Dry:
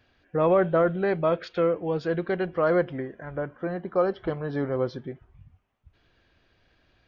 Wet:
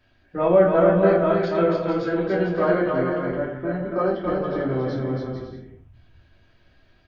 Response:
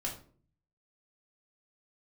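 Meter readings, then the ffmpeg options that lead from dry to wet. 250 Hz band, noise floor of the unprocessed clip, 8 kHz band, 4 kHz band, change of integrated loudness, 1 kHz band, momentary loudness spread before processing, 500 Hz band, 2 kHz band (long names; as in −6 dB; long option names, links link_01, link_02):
+6.0 dB, −66 dBFS, can't be measured, +3.5 dB, +4.5 dB, +4.5 dB, 12 LU, +4.5 dB, +4.0 dB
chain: -filter_complex "[0:a]aecho=1:1:280|448|548.8|609.3|645.6:0.631|0.398|0.251|0.158|0.1[link_01];[1:a]atrim=start_sample=2205,atrim=end_sample=6174[link_02];[link_01][link_02]afir=irnorm=-1:irlink=0"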